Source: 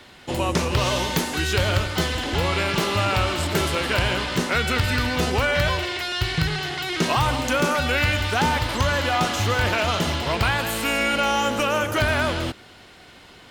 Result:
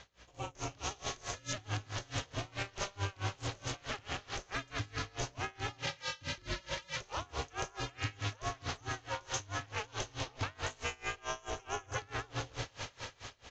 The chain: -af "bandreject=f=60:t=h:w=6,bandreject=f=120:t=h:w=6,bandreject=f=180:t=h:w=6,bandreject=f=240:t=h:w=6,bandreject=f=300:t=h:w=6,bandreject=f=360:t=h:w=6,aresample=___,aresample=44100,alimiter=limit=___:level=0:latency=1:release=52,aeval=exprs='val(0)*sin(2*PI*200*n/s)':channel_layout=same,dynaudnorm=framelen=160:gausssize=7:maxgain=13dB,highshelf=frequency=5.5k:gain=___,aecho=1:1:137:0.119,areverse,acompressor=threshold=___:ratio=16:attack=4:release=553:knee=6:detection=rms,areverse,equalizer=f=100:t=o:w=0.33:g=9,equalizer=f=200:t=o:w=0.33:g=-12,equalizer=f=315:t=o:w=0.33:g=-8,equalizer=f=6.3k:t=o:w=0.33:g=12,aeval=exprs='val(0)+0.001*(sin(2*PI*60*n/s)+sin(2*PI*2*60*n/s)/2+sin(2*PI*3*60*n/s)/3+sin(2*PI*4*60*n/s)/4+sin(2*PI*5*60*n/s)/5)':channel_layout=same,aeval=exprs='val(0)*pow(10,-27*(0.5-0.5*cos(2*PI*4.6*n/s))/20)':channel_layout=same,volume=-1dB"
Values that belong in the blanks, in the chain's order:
16000, -15.5dB, -2.5, -26dB